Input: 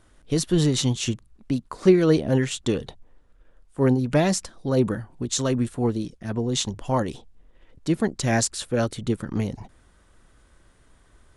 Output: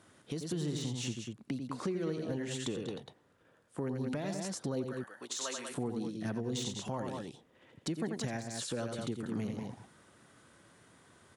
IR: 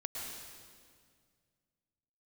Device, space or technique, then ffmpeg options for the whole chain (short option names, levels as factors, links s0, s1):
podcast mastering chain: -filter_complex "[0:a]asettb=1/sr,asplit=3[s0][s1][s2];[s0]atrim=end=4.844[s3];[s1]atrim=start=4.84:end=5.71,asetpts=PTS-STARTPTS,afade=t=in:d=0.004:c=qsin,afade=t=out:st=0.866:d=0.004:c=qsin,highpass=870[s4];[s2]atrim=start=5.706[s5];[s3][s4]acrossfade=d=0.004:c1=hsin:c2=qsin[s6];[s6][s5]acrossfade=d=0.004:c1=qsin:c2=hsin,highpass=f=110:w=0.5412,highpass=f=110:w=1.3066,aecho=1:1:87.46|192.4:0.447|0.282,deesser=0.55,acompressor=threshold=0.0251:ratio=3,alimiter=level_in=1.12:limit=0.0631:level=0:latency=1:release=422,volume=0.891" -ar 48000 -c:a libmp3lame -b:a 128k